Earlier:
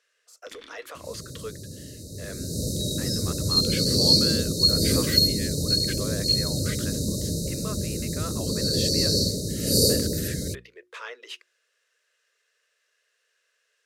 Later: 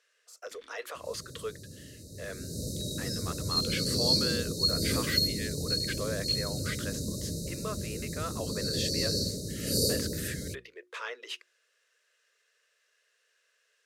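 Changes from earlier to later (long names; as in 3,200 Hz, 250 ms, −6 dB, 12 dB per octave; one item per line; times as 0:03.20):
first sound −9.5 dB
second sound −7.5 dB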